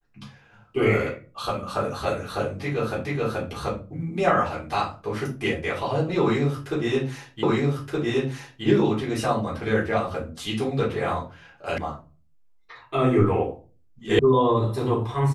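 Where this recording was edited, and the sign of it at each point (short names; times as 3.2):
3.05 repeat of the last 0.43 s
7.43 repeat of the last 1.22 s
11.78 sound cut off
14.19 sound cut off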